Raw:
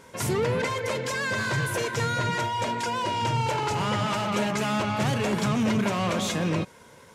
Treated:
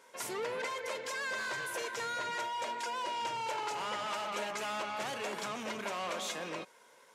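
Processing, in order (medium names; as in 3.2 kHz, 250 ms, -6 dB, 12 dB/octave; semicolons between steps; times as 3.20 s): high-pass 470 Hz 12 dB/octave; trim -8 dB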